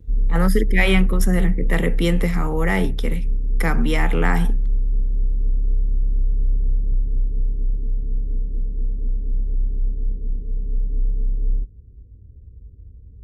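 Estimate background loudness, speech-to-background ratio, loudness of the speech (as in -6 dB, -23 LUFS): -25.5 LUFS, 3.0 dB, -22.5 LUFS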